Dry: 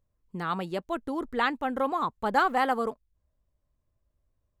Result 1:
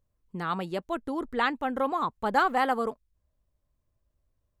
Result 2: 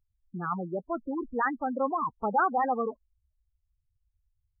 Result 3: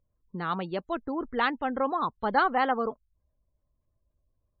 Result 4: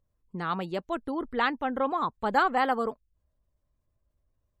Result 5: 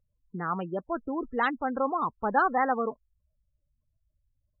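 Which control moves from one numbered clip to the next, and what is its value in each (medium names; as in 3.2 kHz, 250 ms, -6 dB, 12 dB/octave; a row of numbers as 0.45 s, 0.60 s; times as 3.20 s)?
spectral gate, under each frame's peak: -60 dB, -10 dB, -35 dB, -45 dB, -20 dB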